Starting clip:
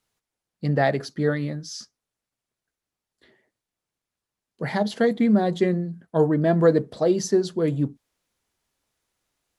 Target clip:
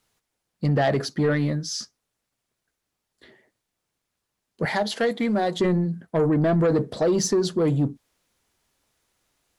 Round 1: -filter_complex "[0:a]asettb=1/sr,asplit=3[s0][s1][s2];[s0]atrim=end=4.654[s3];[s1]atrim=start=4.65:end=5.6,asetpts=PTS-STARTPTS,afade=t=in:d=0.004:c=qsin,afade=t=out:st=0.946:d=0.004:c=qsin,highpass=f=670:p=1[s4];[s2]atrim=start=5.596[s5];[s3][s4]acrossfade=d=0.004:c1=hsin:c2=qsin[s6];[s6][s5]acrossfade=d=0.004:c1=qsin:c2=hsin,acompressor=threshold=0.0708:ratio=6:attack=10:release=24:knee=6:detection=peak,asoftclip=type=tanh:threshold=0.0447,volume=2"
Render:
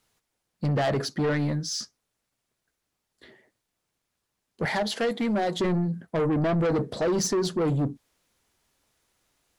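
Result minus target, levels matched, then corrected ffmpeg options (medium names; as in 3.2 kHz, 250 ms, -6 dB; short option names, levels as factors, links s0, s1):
saturation: distortion +7 dB
-filter_complex "[0:a]asettb=1/sr,asplit=3[s0][s1][s2];[s0]atrim=end=4.654[s3];[s1]atrim=start=4.65:end=5.6,asetpts=PTS-STARTPTS,afade=t=in:d=0.004:c=qsin,afade=t=out:st=0.946:d=0.004:c=qsin,highpass=f=670:p=1[s4];[s2]atrim=start=5.596[s5];[s3][s4]acrossfade=d=0.004:c1=hsin:c2=qsin[s6];[s6][s5]acrossfade=d=0.004:c1=qsin:c2=hsin,acompressor=threshold=0.0708:ratio=6:attack=10:release=24:knee=6:detection=peak,asoftclip=type=tanh:threshold=0.1,volume=2"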